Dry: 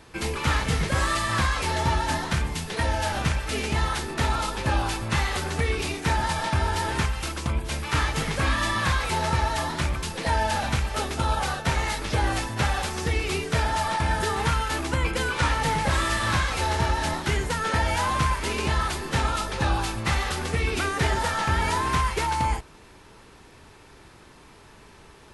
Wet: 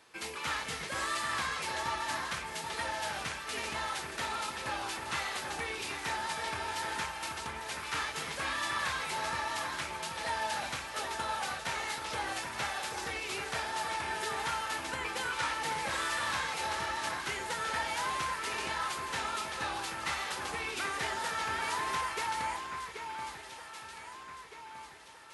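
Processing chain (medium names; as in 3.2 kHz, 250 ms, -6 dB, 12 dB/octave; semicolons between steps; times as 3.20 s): high-pass 800 Hz 6 dB/octave; on a send: echo whose repeats swap between lows and highs 782 ms, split 2.5 kHz, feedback 65%, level -5.5 dB; on the sum: trim -7 dB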